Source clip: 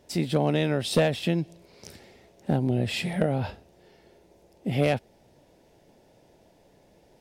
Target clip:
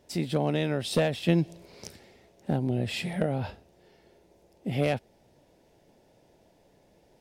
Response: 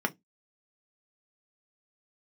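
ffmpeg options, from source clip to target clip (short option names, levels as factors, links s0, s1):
-filter_complex "[0:a]asettb=1/sr,asplit=3[s0][s1][s2];[s0]atrim=end=1.284[s3];[s1]atrim=start=1.28:end=1.88,asetpts=PTS-STARTPTS,afade=t=in:d=0.004:c=qsin,afade=t=out:st=0.596:d=0.004:c=qsin,acontrast=50[s4];[s2]atrim=start=1.876[s5];[s3][s4]acrossfade=d=0.004:c1=hsin:c2=qsin[s6];[s6][s5]acrossfade=d=0.004:c1=qsin:c2=hsin,volume=0.708"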